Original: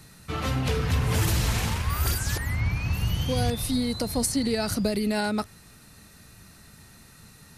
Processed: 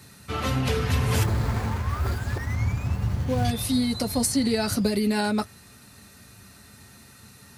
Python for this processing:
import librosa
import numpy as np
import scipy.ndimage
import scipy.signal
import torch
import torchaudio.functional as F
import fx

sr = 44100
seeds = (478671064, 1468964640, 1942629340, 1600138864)

y = fx.median_filter(x, sr, points=15, at=(1.23, 3.45))
y = scipy.signal.sosfilt(scipy.signal.butter(2, 73.0, 'highpass', fs=sr, output='sos'), y)
y = fx.notch_comb(y, sr, f0_hz=160.0)
y = y * 10.0 ** (3.0 / 20.0)